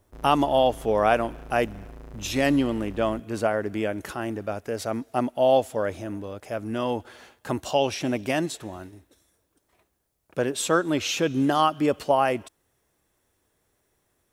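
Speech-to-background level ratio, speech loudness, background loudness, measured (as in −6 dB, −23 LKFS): 19.0 dB, −25.5 LKFS, −44.5 LKFS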